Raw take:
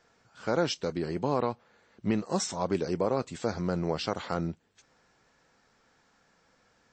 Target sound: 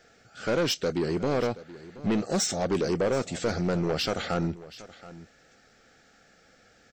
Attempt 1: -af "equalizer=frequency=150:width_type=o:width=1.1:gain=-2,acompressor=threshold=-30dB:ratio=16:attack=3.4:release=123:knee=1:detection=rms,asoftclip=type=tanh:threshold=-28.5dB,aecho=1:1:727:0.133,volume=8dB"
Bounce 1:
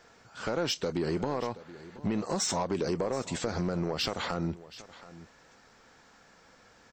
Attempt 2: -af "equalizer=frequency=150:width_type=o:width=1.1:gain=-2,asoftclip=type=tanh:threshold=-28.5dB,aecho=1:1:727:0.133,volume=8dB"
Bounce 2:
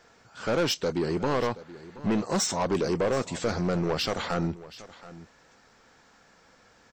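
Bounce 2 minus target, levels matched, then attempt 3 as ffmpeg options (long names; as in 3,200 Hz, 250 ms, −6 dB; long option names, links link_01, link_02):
1,000 Hz band +2.5 dB
-af "asuperstop=centerf=1000:order=4:qfactor=2.5,equalizer=frequency=150:width_type=o:width=1.1:gain=-2,asoftclip=type=tanh:threshold=-28.5dB,aecho=1:1:727:0.133,volume=8dB"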